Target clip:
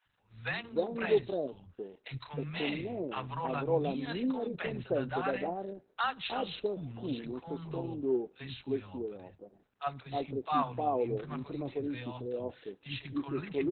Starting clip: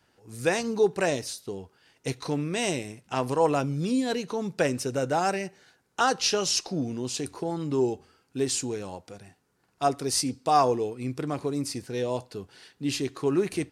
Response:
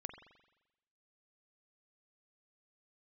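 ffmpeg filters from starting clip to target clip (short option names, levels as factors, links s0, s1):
-filter_complex "[0:a]acrossover=split=190|780[s0][s1][s2];[s0]adelay=50[s3];[s1]adelay=310[s4];[s3][s4][s2]amix=inputs=3:normalize=0,volume=0.631" -ar 48000 -c:a libopus -b:a 8k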